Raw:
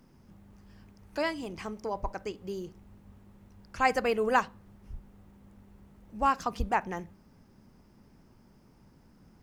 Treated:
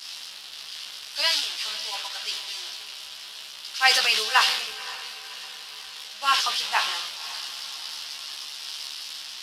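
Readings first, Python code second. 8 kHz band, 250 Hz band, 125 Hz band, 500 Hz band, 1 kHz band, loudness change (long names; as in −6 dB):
+19.5 dB, below −15 dB, below −20 dB, −8.5 dB, +2.5 dB, +6.0 dB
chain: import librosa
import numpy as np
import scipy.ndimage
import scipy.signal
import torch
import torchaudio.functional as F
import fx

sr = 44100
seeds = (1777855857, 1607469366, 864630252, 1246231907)

y = fx.delta_mod(x, sr, bps=64000, step_db=-33.0)
y = scipy.signal.sosfilt(scipy.signal.butter(2, 1400.0, 'highpass', fs=sr, output='sos'), y)
y = fx.band_shelf(y, sr, hz=3900.0, db=12.5, octaves=1.2)
y = fx.transient(y, sr, attack_db=0, sustain_db=7)
y = fx.doubler(y, sr, ms=14.0, db=-2.5)
y = fx.echo_diffused(y, sr, ms=546, feedback_pct=61, wet_db=-10.5)
y = fx.band_widen(y, sr, depth_pct=70)
y = F.gain(torch.from_numpy(y), 2.5).numpy()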